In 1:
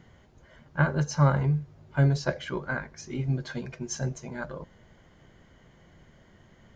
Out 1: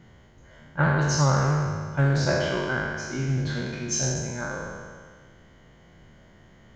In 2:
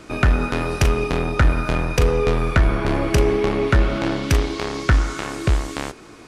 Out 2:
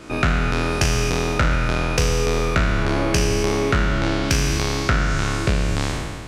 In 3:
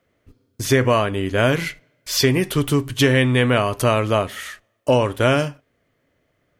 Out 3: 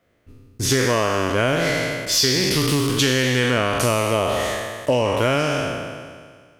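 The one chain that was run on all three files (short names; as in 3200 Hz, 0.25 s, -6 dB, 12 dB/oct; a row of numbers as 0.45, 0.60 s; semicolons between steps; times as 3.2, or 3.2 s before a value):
spectral trails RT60 1.81 s; dynamic EQ 5500 Hz, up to +5 dB, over -35 dBFS, Q 0.95; compressor 4:1, threshold -16 dBFS; Doppler distortion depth 0.13 ms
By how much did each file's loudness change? +3.5, -0.5, -0.5 LU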